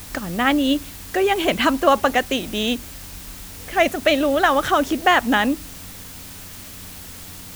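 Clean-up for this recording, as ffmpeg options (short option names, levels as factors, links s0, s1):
-af "bandreject=f=90.5:t=h:w=4,bandreject=f=181:t=h:w=4,bandreject=f=271.5:t=h:w=4,afwtdn=0.011"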